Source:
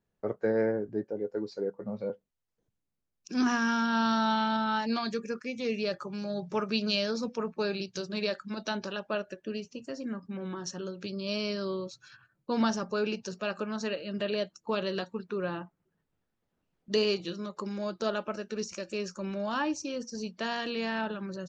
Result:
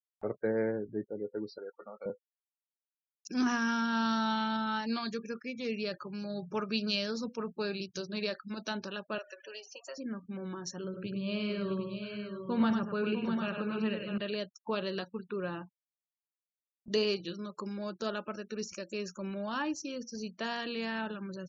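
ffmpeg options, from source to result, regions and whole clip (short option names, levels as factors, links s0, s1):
-filter_complex "[0:a]asettb=1/sr,asplit=3[s0][s1][s2];[s0]atrim=end=1.584[s3];[s1]atrim=start=1.58:end=2.06,asetpts=PTS-STARTPTS,afade=t=in:d=0.004:c=qsin,afade=t=out:st=0.476:d=0.004:c=qsin,highpass=670,lowpass=5300,equalizer=f=1300:t=o:w=0.31:g=10.5[s4];[s2]atrim=start=2.056[s5];[s3][s4]acrossfade=d=0.004:c1=hsin:c2=qsin[s6];[s6][s5]acrossfade=d=0.004:c1=qsin:c2=hsin,asettb=1/sr,asplit=3[s7][s8][s9];[s7]atrim=end=9.184[s10];[s8]atrim=start=9.18:end=9.98,asetpts=PTS-STARTPTS,afade=t=in:d=0.004:c=qsin,afade=t=out:st=0.796:d=0.004:c=qsin,aeval=exprs='val(0)+0.5*0.00398*sgn(val(0))':c=same,highpass=f=570:w=0.5412,highpass=f=570:w=1.3066,aecho=1:1:5.3:0.33,atrim=end_sample=35280[s11];[s9]atrim=start=9.976[s12];[s10][s11]acrossfade=d=0.004:c1=hsin:c2=qsin[s13];[s13][s12]acrossfade=d=0.004:c1=qsin:c2=hsin,asettb=1/sr,asplit=3[s14][s15][s16];[s14]atrim=end=10.844[s17];[s15]atrim=start=10.84:end=14.18,asetpts=PTS-STARTPTS,afade=t=in:d=0.004:c=qsin,afade=t=out:st=3.336:d=0.004:c=qsin,lowpass=f=3500:w=0.5412,lowpass=f=3500:w=1.3066,equalizer=f=120:t=o:w=0.92:g=10,aecho=1:1:58|99|651|748:0.158|0.501|0.398|0.398,atrim=end_sample=147294[s18];[s16]atrim=start=14.176[s19];[s17][s18]acrossfade=d=0.004:c1=hsin:c2=qsin[s20];[s20][s19]acrossfade=d=0.004:c1=qsin:c2=hsin,adynamicequalizer=threshold=0.00501:dfrequency=660:dqfactor=1.3:tfrequency=660:tqfactor=1.3:attack=5:release=100:ratio=0.375:range=2.5:mode=cutabove:tftype=bell,afftfilt=real='re*gte(hypot(re,im),0.00355)':imag='im*gte(hypot(re,im),0.00355)':win_size=1024:overlap=0.75,acompressor=mode=upward:threshold=0.0112:ratio=2.5,volume=0.75"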